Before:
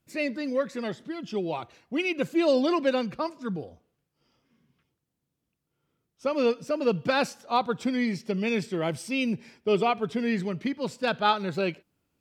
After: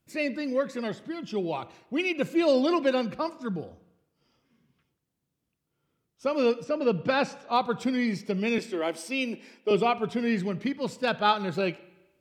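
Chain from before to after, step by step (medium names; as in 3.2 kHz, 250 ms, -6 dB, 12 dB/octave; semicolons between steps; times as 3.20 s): 6.64–7.53 s: distance through air 85 m; 8.58–9.71 s: high-pass 270 Hz 24 dB/octave; reverberation RT60 1.0 s, pre-delay 34 ms, DRR 17 dB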